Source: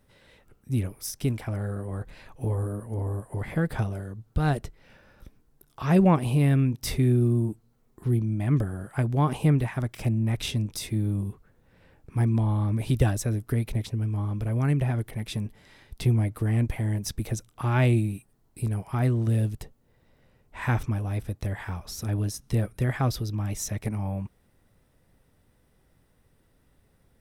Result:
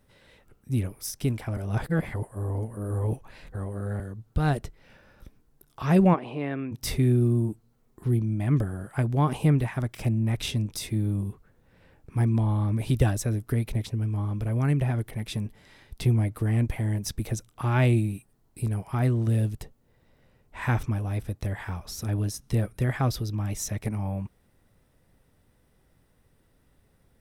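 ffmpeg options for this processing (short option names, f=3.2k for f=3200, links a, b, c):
-filter_complex "[0:a]asplit=3[a][b][c];[a]afade=t=out:st=6.13:d=0.02[d];[b]highpass=350,lowpass=2.3k,afade=t=in:st=6.13:d=0.02,afade=t=out:st=6.71:d=0.02[e];[c]afade=t=in:st=6.71:d=0.02[f];[d][e][f]amix=inputs=3:normalize=0,asplit=3[g][h][i];[g]atrim=end=1.572[j];[h]atrim=start=1.568:end=4.002,asetpts=PTS-STARTPTS,areverse[k];[i]atrim=start=3.998[l];[j][k]acrossfade=d=0.004:c1=hsin:c2=hsin[m];[m][l]acrossfade=d=0.004:c1=hsin:c2=hsin"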